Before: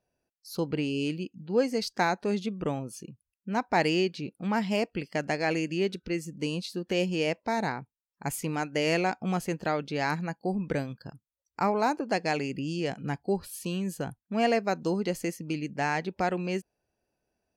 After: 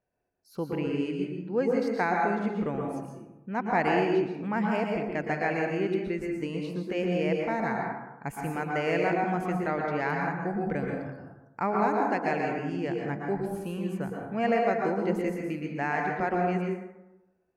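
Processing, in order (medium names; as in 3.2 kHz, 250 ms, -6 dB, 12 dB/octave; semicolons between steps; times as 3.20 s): resonant high shelf 2.8 kHz -10 dB, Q 1.5; plate-style reverb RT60 0.99 s, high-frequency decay 0.45×, pre-delay 105 ms, DRR 0 dB; trim -3 dB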